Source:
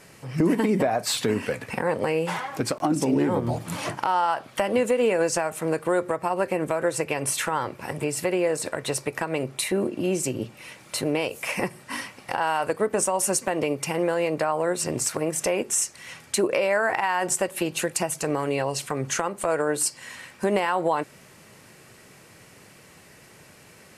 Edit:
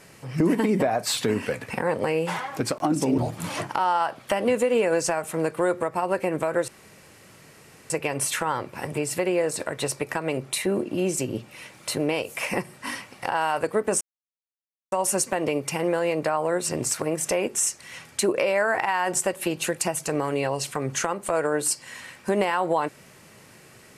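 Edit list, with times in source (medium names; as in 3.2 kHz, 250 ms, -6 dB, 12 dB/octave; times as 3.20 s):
3.18–3.46 s: delete
6.96 s: insert room tone 1.22 s
13.07 s: insert silence 0.91 s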